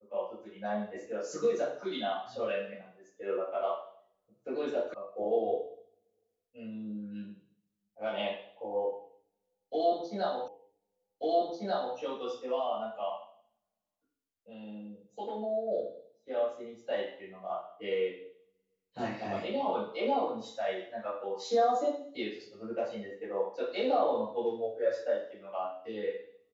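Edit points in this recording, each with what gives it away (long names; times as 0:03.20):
0:04.94: cut off before it has died away
0:10.48: the same again, the last 1.49 s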